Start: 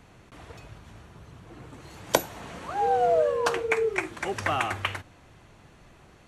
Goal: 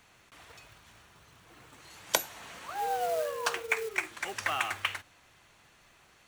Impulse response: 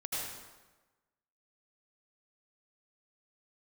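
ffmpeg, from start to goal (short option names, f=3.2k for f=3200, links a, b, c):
-af "acrusher=bits=6:mode=log:mix=0:aa=0.000001,tiltshelf=f=770:g=-8,volume=-7.5dB"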